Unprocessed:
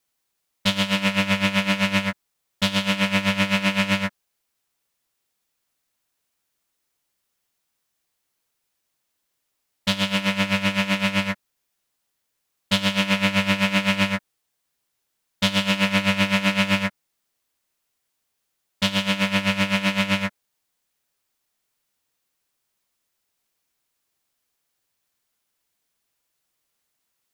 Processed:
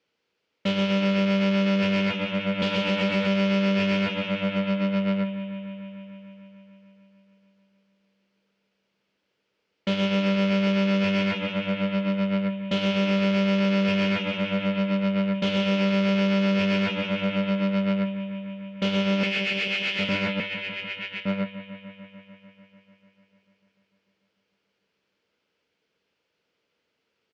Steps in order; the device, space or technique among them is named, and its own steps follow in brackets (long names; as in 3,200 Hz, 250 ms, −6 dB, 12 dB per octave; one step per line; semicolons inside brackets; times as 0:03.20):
0:19.23–0:20.09: Butterworth high-pass 1,700 Hz 36 dB per octave
slap from a distant wall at 200 metres, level −6 dB
analogue delay pedal into a guitar amplifier (bucket-brigade delay 148 ms, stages 4,096, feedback 78%, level −16 dB; tube saturation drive 29 dB, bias 0.3; loudspeaker in its box 98–4,100 Hz, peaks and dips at 110 Hz −6 dB, 460 Hz +8 dB, 750 Hz −7 dB, 1,100 Hz −7 dB, 1,800 Hz −5 dB, 3,800 Hz −7 dB)
level +9 dB